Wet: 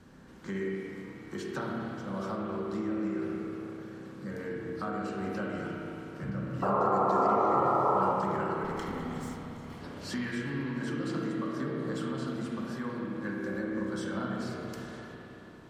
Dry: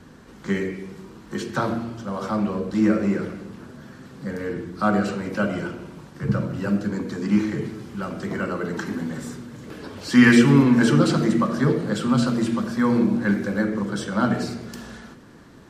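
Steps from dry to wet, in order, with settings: 8.64–9.81 minimum comb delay 0.93 ms; compressor 6:1, threshold -25 dBFS, peak gain reduction 15 dB; 6.62–8.12 painted sound noise 350–1400 Hz -21 dBFS; spring tank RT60 3.3 s, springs 31/57 ms, chirp 45 ms, DRR -1 dB; gain -9 dB

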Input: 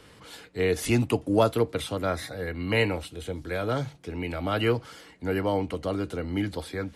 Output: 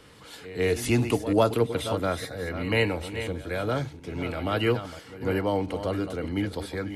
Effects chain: reverse delay 0.333 s, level -10 dB; reverse echo 0.146 s -16.5 dB

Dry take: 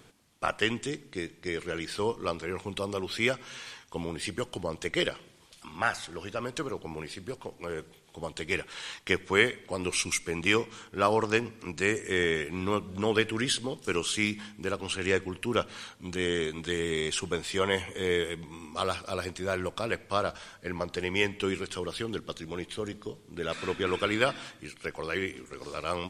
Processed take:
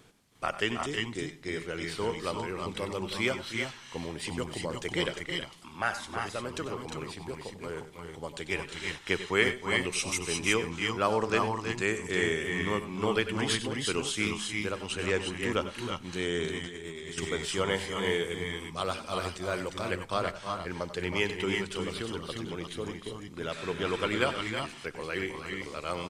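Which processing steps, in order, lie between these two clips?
on a send: tapped delay 92/97/318/353/354 ms -17/-14/-10/-7.5/-5.5 dB; 16.58–17.18 on the sum: negative-ratio compressor -38 dBFS, ratio -1; gain -2.5 dB

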